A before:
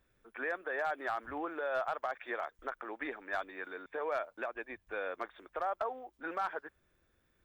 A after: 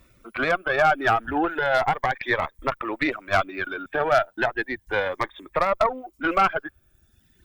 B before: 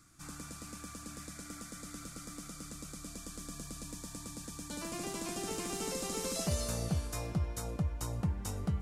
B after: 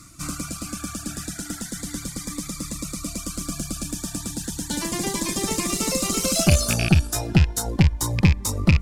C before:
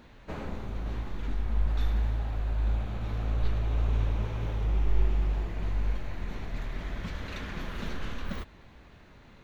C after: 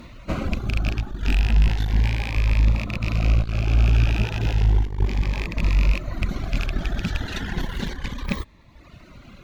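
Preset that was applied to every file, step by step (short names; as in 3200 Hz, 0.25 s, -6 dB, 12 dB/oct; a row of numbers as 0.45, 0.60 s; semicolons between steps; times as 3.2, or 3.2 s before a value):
rattling part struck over -30 dBFS, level -23 dBFS; reverb removal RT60 1.2 s; bell 460 Hz -7 dB 0.26 oct; tube stage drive 27 dB, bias 0.65; cascading phaser rising 0.34 Hz; match loudness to -24 LUFS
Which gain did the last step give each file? +22.0, +21.0, +16.5 dB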